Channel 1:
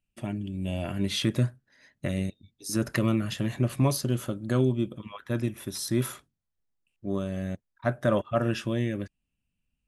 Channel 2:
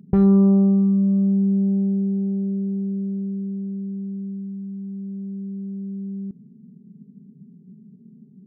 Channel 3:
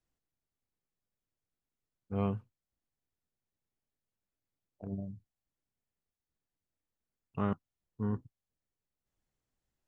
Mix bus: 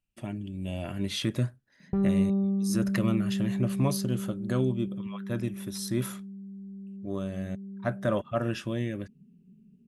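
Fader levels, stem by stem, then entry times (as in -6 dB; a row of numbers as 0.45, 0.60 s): -3.0 dB, -10.5 dB, off; 0.00 s, 1.80 s, off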